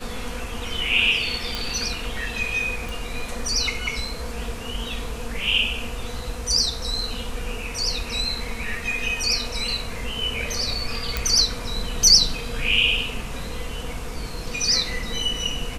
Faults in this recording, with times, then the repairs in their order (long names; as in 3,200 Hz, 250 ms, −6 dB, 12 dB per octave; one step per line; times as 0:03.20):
0:01.55: click
0:02.89: click
0:11.17: click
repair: click removal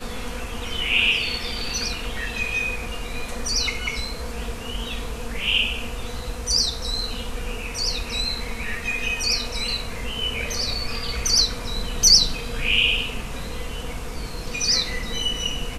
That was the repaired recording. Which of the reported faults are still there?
none of them is left